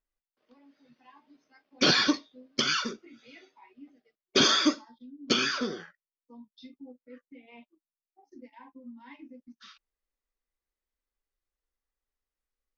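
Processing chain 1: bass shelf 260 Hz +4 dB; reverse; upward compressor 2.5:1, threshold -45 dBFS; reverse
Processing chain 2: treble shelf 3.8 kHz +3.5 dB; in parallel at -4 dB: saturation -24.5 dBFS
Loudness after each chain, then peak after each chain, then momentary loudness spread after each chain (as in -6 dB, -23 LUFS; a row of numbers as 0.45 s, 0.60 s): -25.5 LUFS, -22.0 LUFS; -9.5 dBFS, -8.0 dBFS; 14 LU, 13 LU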